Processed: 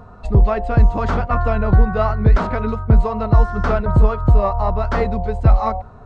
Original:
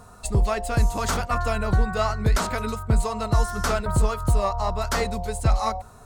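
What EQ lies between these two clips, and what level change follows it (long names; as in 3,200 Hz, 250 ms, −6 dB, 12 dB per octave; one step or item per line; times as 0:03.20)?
head-to-tape spacing loss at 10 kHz 41 dB
+8.5 dB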